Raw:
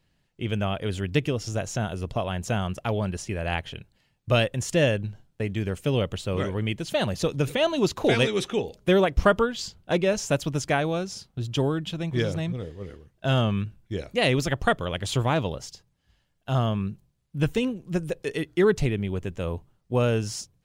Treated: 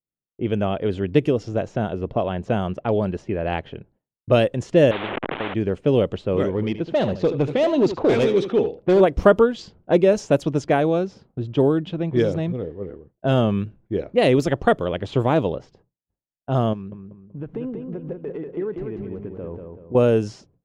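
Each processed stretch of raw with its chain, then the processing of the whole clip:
4.91–5.54 s: one-bit delta coder 16 kbps, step -39 dBFS + spectrum-flattening compressor 10:1
6.51–9.01 s: low-pass 5.8 kHz + hard clipper -20.5 dBFS + delay 77 ms -11.5 dB
16.73–19.95 s: compression 4:1, threshold -35 dBFS + feedback delay 190 ms, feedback 43%, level -5 dB + sliding maximum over 3 samples
whole clip: expander -50 dBFS; level-controlled noise filter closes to 910 Hz, open at -19 dBFS; peaking EQ 380 Hz +12.5 dB 2.7 oct; trim -3.5 dB

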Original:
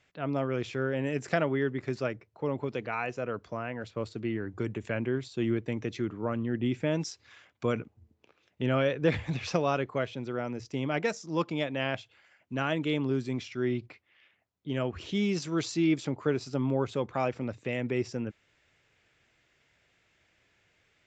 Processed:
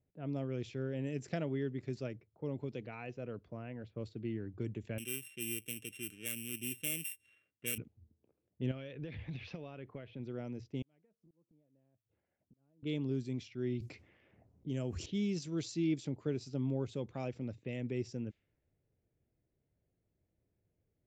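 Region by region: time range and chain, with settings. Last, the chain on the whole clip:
4.98–7.78 s: sorted samples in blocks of 16 samples + tilt EQ +4 dB/octave + static phaser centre 2.1 kHz, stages 4
8.71–10.20 s: low-pass 5.4 kHz + peaking EQ 2.6 kHz +6 dB 2.3 oct + compression 8:1, threshold -32 dBFS
10.82–12.83 s: inverted gate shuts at -29 dBFS, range -30 dB + compression 10:1, threshold -56 dBFS
13.80–15.06 s: resonant high shelf 4.8 kHz +9 dB, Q 1.5 + level flattener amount 50%
whole clip: peaking EQ 1.2 kHz -12.5 dB 1.8 oct; level-controlled noise filter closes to 710 Hz, open at -29.5 dBFS; bass shelf 210 Hz +3.5 dB; trim -6.5 dB

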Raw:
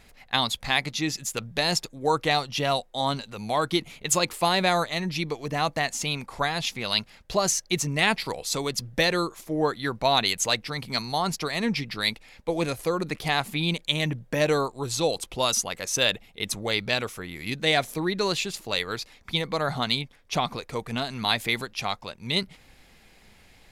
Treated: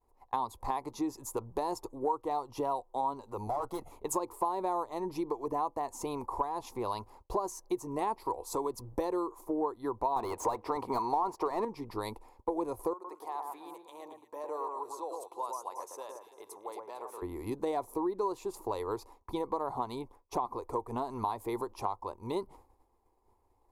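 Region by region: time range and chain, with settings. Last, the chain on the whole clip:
3.47–3.92 s: comb 1.5 ms, depth 78% + valve stage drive 26 dB, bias 0.65
10.16–11.65 s: treble shelf 9.9 kHz -6 dB + overdrive pedal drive 24 dB, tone 2.3 kHz, clips at -7 dBFS
12.93–17.22 s: compression 2.5:1, threshold -40 dBFS + high-pass 580 Hz + echo whose repeats swap between lows and highs 113 ms, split 1.7 kHz, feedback 57%, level -3.5 dB
whole clip: expander -43 dBFS; FFT filter 100 Hz 0 dB, 160 Hz -17 dB, 360 Hz +7 dB, 640 Hz -2 dB, 990 Hz +12 dB, 1.5 kHz -17 dB, 2.2 kHz -20 dB, 3.1 kHz -24 dB, 11 kHz -6 dB; compression 4:1, threshold -31 dBFS

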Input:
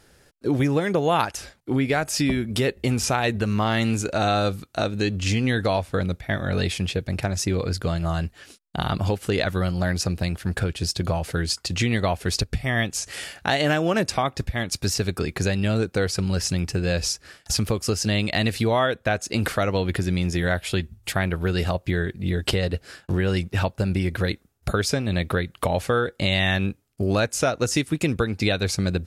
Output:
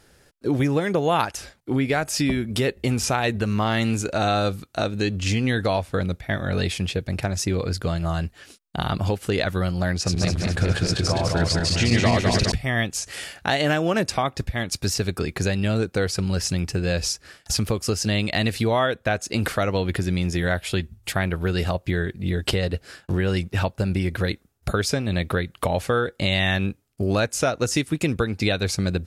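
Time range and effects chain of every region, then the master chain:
9.95–12.52 s: backward echo that repeats 103 ms, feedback 74%, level -1 dB + low-pass 8.2 kHz
whole clip: none

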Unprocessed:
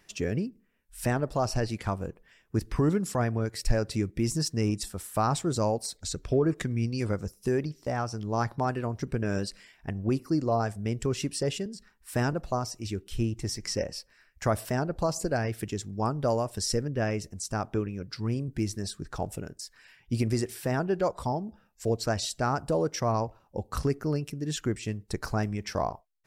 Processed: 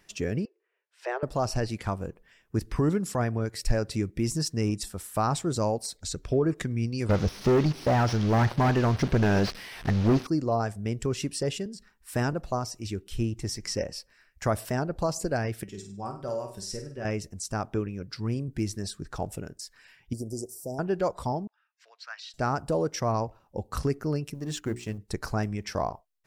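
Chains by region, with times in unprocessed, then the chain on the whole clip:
0.45–1.23 s: steep high-pass 360 Hz 96 dB/octave + distance through air 190 m
7.09–10.27 s: one-bit delta coder 32 kbps, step -44 dBFS + waveshaping leveller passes 3
15.63–17.05 s: feedback comb 190 Hz, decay 0.18 s, mix 80% + flutter echo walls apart 8.5 m, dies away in 0.42 s
20.13–20.79 s: inverse Chebyshev band-stop 1.3–3.3 kHz, stop band 50 dB + bass shelf 390 Hz -11.5 dB
21.47–22.34 s: high-pass 1.3 kHz 24 dB/octave + distance through air 260 m
24.34–24.98 s: companding laws mixed up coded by A + hum notches 60/120/180/240/300/360/420 Hz
whole clip: none

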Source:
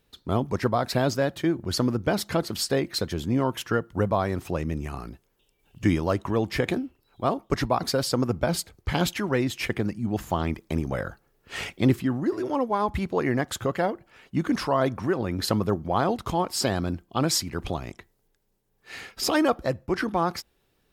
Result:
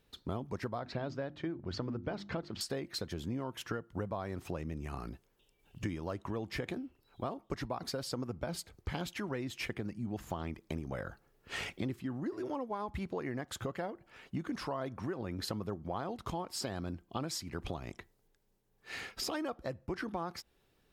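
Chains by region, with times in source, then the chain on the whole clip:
0.79–2.61 s: distance through air 180 m + hum notches 50/100/150/200/250/300/350 Hz
whole clip: compression 5:1, threshold -33 dBFS; treble shelf 8.8 kHz -4 dB; trim -2.5 dB

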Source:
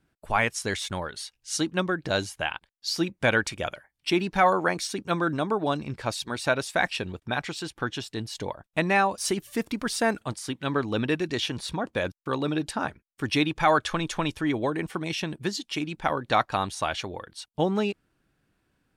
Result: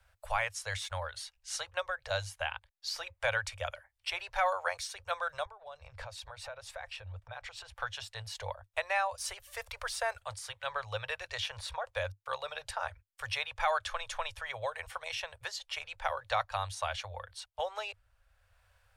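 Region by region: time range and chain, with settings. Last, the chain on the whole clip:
5.45–7.73 s: tilt EQ -2 dB/octave + compression 12:1, threshold -35 dBFS
whole clip: Chebyshev band-stop 100–530 Hz, order 4; bass shelf 110 Hz +8 dB; three bands compressed up and down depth 40%; trim -6 dB

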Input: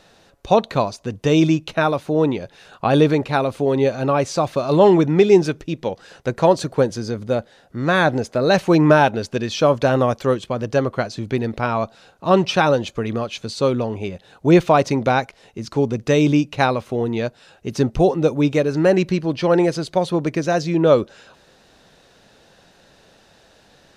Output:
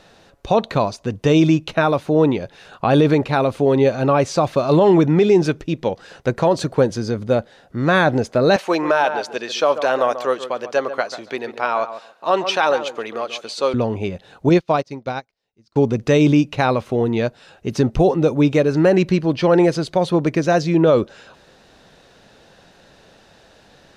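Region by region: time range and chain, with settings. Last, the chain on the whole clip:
8.56–13.74 s: high-pass 550 Hz + filtered feedback delay 140 ms, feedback 18%, low-pass 1.8 kHz, level -11 dB
14.49–15.76 s: peaking EQ 4.8 kHz +8 dB 0.66 oct + upward expansion 2.5:1, over -30 dBFS
whole clip: treble shelf 5.5 kHz -5 dB; loudness maximiser +8 dB; trim -5 dB

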